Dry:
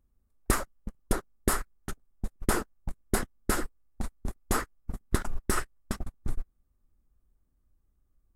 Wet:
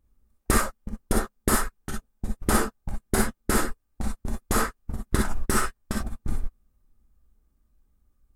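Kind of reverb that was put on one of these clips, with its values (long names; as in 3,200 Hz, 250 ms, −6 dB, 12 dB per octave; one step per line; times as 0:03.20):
reverb whose tail is shaped and stops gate 80 ms rising, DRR −1 dB
level +2 dB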